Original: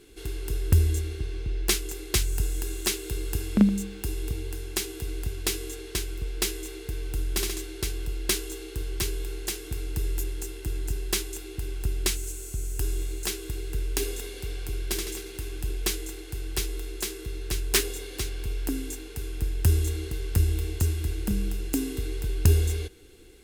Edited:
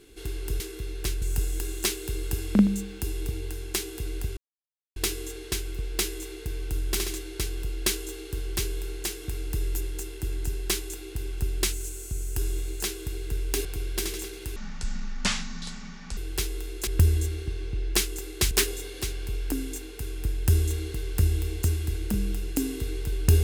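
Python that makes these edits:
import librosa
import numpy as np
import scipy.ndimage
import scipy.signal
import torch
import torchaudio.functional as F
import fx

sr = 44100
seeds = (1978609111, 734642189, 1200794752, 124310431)

y = fx.edit(x, sr, fx.swap(start_s=0.6, length_s=1.64, other_s=17.06, other_length_s=0.62),
    fx.insert_silence(at_s=5.39, length_s=0.59),
    fx.cut(start_s=14.08, length_s=0.5),
    fx.speed_span(start_s=15.49, length_s=0.87, speed=0.54), tone=tone)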